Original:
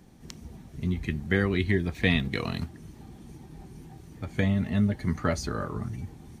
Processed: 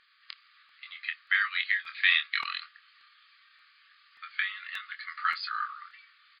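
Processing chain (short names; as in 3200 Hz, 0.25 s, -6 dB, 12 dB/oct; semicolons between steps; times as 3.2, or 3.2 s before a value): brick-wall FIR band-pass 1100–5000 Hz; doubler 25 ms -7 dB; crackling interface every 0.58 s, samples 64, repeat, from 0.69; gain +4.5 dB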